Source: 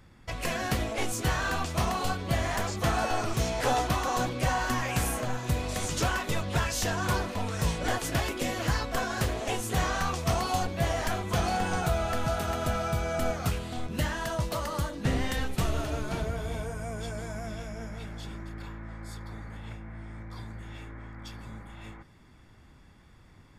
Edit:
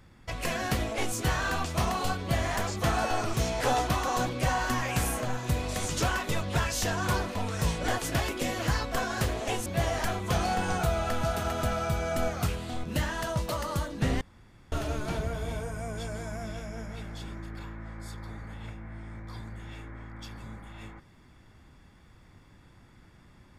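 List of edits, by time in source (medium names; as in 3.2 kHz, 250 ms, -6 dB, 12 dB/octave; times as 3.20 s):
9.66–10.69 s: delete
15.24–15.75 s: room tone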